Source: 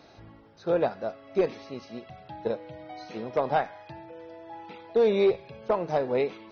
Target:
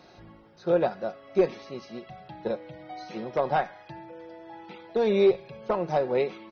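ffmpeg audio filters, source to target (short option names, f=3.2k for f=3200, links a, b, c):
-af "aecho=1:1:5.5:0.42"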